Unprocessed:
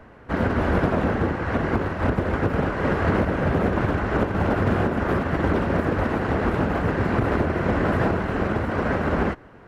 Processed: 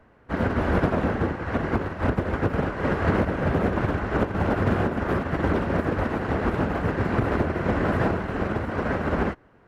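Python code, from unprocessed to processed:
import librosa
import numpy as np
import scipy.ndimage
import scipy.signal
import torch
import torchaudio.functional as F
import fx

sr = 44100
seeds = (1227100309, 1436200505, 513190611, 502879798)

y = fx.upward_expand(x, sr, threshold_db=-36.0, expansion=1.5)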